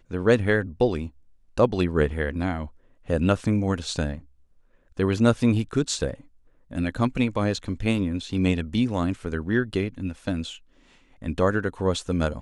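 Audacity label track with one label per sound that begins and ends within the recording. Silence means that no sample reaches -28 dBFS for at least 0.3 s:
1.580000	2.650000	sound
3.100000	4.160000	sound
4.990000	6.140000	sound
6.730000	10.490000	sound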